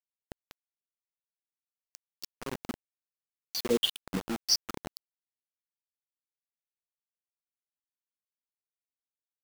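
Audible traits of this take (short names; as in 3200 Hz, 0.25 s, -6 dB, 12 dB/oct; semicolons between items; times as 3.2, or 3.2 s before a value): phasing stages 8, 0.82 Hz, lowest notch 490–1800 Hz; chopped level 5.4 Hz, depth 65%, duty 80%; a quantiser's noise floor 6-bit, dither none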